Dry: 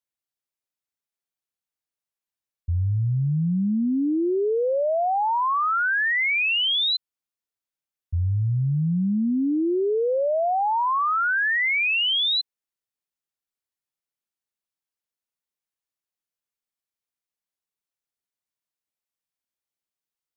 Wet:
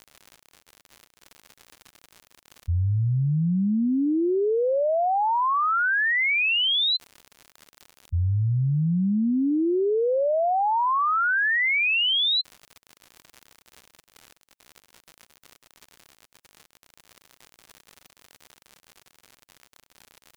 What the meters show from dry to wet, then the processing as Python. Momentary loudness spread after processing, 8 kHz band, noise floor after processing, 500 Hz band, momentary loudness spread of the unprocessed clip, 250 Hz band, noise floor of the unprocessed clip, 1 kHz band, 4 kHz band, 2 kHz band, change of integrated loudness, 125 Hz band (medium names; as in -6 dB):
5 LU, no reading, -85 dBFS, 0.0 dB, 5 LU, 0.0 dB, under -85 dBFS, 0.0 dB, 0.0 dB, 0.0 dB, 0.0 dB, 0.0 dB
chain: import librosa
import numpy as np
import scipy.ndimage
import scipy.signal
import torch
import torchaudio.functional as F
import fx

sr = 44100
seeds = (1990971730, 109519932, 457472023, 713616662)

y = fx.dmg_crackle(x, sr, seeds[0], per_s=97.0, level_db=-32.0)
y = fx.spec_gate(y, sr, threshold_db=-15, keep='strong')